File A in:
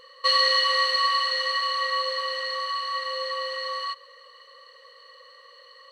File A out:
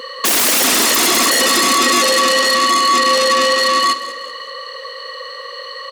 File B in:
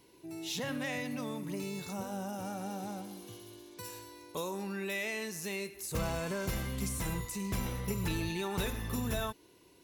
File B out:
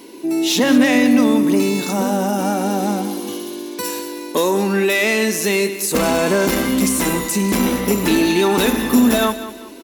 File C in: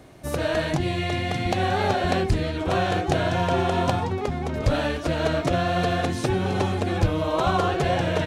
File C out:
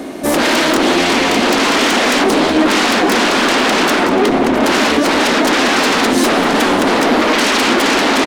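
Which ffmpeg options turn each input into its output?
-af "aeval=exprs='0.316*sin(PI/2*7.08*val(0)/0.316)':c=same,lowshelf=f=170:t=q:w=3:g=-13,aecho=1:1:192|384|576|768:0.211|0.0782|0.0289|0.0107,volume=-1dB"

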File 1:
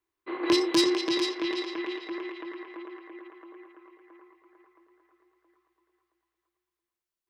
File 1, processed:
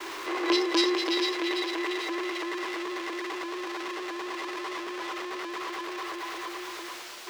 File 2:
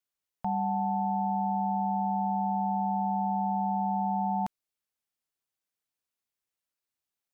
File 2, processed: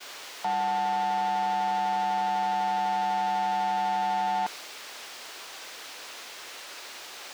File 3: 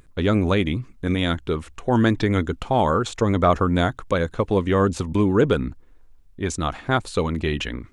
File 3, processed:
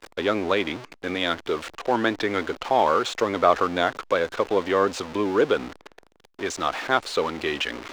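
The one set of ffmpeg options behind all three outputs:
-filter_complex "[0:a]aeval=exprs='val(0)+0.5*0.0447*sgn(val(0))':c=same,acrossover=split=320 6100:gain=0.0794 1 0.158[a][b][c];[a][b][c]amix=inputs=3:normalize=0,agate=range=-33dB:threshold=-40dB:ratio=3:detection=peak"

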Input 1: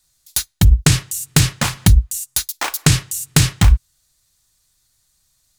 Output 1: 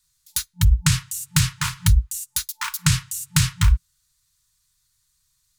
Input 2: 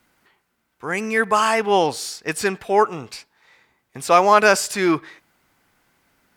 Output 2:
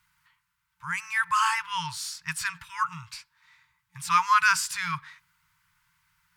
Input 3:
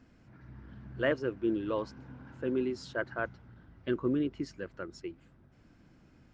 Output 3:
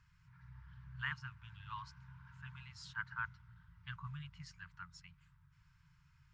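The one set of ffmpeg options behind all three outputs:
-af "afftfilt=real='re*(1-between(b*sr/4096,180,880))':imag='im*(1-between(b*sr/4096,180,880))':win_size=4096:overlap=0.75,adynamicequalizer=threshold=0.00794:dfrequency=1400:dqfactor=7.9:tfrequency=1400:tqfactor=7.9:attack=5:release=100:ratio=0.375:range=2:mode=boostabove:tftype=bell,volume=-5dB"

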